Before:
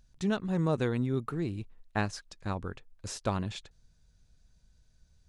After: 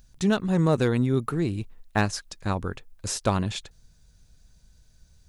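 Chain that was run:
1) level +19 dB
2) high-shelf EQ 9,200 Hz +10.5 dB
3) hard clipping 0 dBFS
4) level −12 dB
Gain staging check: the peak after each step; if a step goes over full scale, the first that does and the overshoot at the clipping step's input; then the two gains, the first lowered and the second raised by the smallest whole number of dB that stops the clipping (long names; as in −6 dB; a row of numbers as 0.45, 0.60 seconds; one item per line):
+3.5, +3.5, 0.0, −12.0 dBFS
step 1, 3.5 dB
step 1 +15 dB, step 4 −8 dB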